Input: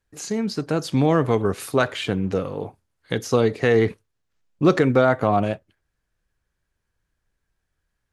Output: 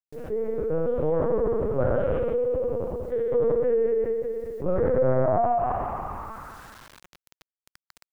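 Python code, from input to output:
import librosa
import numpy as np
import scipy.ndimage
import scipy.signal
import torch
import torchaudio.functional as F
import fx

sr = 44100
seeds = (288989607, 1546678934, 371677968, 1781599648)

y = fx.spec_trails(x, sr, decay_s=1.56)
y = fx.echo_feedback(y, sr, ms=81, feedback_pct=19, wet_db=-18.5)
y = fx.rider(y, sr, range_db=4, speed_s=2.0)
y = scipy.signal.sosfilt(scipy.signal.butter(2, 1900.0, 'lowpass', fs=sr, output='sos'), y)
y = fx.low_shelf(y, sr, hz=440.0, db=-11.5)
y = fx.echo_heads(y, sr, ms=60, heads='second and third', feedback_pct=43, wet_db=-7)
y = fx.filter_sweep_bandpass(y, sr, from_hz=500.0, to_hz=1500.0, start_s=4.98, end_s=6.66, q=3.4)
y = scipy.signal.sosfilt(scipy.signal.butter(2, 48.0, 'highpass', fs=sr, output='sos'), y)
y = fx.lpc_vocoder(y, sr, seeds[0], excitation='pitch_kept', order=8)
y = fx.quant_dither(y, sr, seeds[1], bits=12, dither='none')
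y = fx.low_shelf(y, sr, hz=190.0, db=3.0)
y = fx.env_flatten(y, sr, amount_pct=50)
y = y * librosa.db_to_amplitude(-2.5)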